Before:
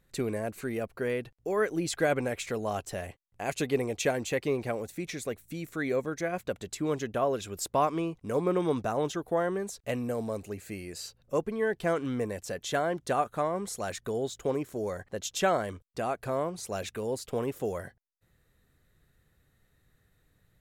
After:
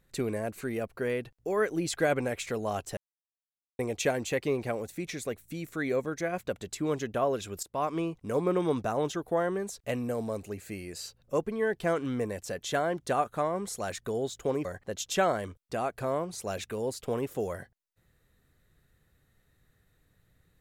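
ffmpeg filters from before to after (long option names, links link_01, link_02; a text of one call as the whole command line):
ffmpeg -i in.wav -filter_complex "[0:a]asplit=5[link_01][link_02][link_03][link_04][link_05];[link_01]atrim=end=2.97,asetpts=PTS-STARTPTS,afade=type=out:start_time=2.966:duration=0.004:curve=hsin[link_06];[link_02]atrim=start=2.97:end=3.79,asetpts=PTS-STARTPTS,volume=0[link_07];[link_03]atrim=start=3.79:end=7.63,asetpts=PTS-STARTPTS,afade=type=in:duration=0.004:curve=hsin,afade=type=out:start_time=3.836:duration=0.004:curve=hsin:silence=0.125893[link_08];[link_04]atrim=start=7.63:end=14.652,asetpts=PTS-STARTPTS,afade=type=in:duration=0.36:silence=0.125893[link_09];[link_05]atrim=start=14.898[link_10];[link_06][link_07][link_08][link_09]concat=n=4:v=0:a=1[link_11];[link_11][link_10]acrossfade=duration=0.004:curve1=hsin:curve2=hsin" out.wav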